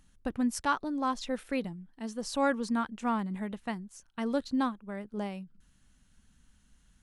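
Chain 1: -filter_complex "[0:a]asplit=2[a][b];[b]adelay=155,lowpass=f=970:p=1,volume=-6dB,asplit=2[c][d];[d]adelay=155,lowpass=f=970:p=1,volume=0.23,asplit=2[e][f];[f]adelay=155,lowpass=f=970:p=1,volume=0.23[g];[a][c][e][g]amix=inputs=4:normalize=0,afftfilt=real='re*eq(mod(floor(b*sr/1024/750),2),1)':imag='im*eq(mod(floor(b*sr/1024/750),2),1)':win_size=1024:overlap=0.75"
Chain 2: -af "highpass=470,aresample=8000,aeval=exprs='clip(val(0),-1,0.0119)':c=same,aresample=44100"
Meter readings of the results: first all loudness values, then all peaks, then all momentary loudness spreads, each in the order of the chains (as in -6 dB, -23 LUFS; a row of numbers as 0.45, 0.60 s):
-37.5, -40.0 LUFS; -17.0, -16.5 dBFS; 19, 13 LU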